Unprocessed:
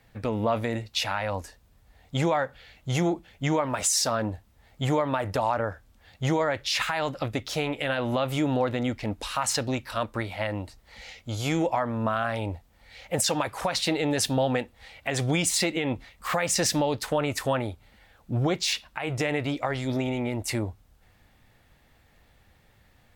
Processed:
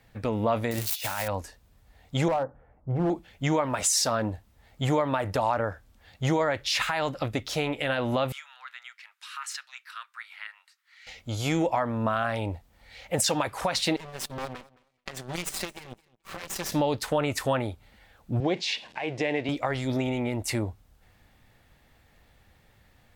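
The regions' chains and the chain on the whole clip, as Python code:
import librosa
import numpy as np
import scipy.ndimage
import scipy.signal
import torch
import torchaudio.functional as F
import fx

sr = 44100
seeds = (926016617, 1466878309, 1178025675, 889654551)

y = fx.chain(x, sr, fx.crossing_spikes(level_db=-21.5),
    fx.over_compress(threshold_db=-30.0, ratio=-0.5), at=(0.71, 1.28))
y = fx.chain(y, sr, fx.lowpass(hz=1100.0, slope=24),
    fx.hum_notches(base_hz=50, count=6),
    fx.clip_hard(threshold_db=-21.0), at=(2.28, 3.1))
y = fx.chain(y, sr, fx.steep_highpass(hz=1300.0, slope=36),
    fx.high_shelf(hz=2100.0, db=-11.0), at=(8.32, 11.07))
y = fx.chain(y, sr, fx.lower_of_two(delay_ms=5.2),
    fx.power_curve(exponent=2.0),
    fx.echo_feedback(ms=216, feedback_pct=16, wet_db=-22.0), at=(13.96, 16.72))
y = fx.chain(y, sr, fx.zero_step(step_db=-40.0),
    fx.bandpass_edges(low_hz=210.0, high_hz=3900.0),
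    fx.peak_eq(hz=1300.0, db=-14.5, octaves=0.35), at=(18.4, 19.49))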